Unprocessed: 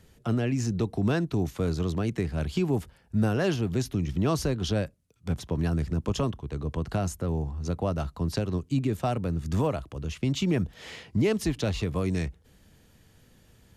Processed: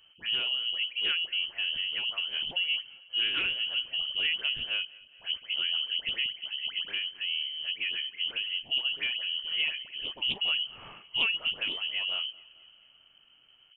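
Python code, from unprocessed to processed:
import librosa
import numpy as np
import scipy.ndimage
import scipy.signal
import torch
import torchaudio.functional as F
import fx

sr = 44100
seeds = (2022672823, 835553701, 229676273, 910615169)

y = fx.spec_delay(x, sr, highs='early', ms=191)
y = fx.peak_eq(y, sr, hz=110.0, db=6.0, octaves=0.26)
y = fx.echo_feedback(y, sr, ms=221, feedback_pct=58, wet_db=-22.5)
y = fx.freq_invert(y, sr, carrier_hz=3100)
y = fx.doppler_dist(y, sr, depth_ms=0.15)
y = F.gain(torch.from_numpy(y), -4.0).numpy()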